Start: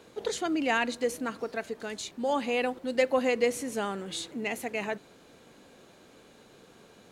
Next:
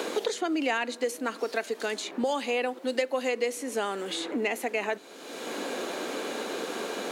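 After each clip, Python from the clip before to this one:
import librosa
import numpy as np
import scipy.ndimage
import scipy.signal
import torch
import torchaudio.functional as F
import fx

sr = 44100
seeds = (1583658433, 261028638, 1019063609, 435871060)

y = scipy.signal.sosfilt(scipy.signal.butter(4, 260.0, 'highpass', fs=sr, output='sos'), x)
y = fx.band_squash(y, sr, depth_pct=100)
y = F.gain(torch.from_numpy(y), 1.0).numpy()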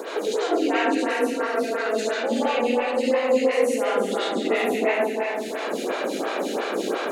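y = x + 10.0 ** (-9.0 / 20.0) * np.pad(x, (int(372 * sr / 1000.0), 0))[:len(x)]
y = fx.rev_freeverb(y, sr, rt60_s=2.8, hf_ratio=0.55, predelay_ms=30, drr_db=-8.5)
y = fx.stagger_phaser(y, sr, hz=2.9)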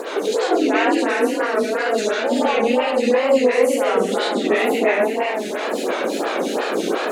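y = fx.wow_flutter(x, sr, seeds[0], rate_hz=2.1, depth_cents=100.0)
y = F.gain(torch.from_numpy(y), 4.5).numpy()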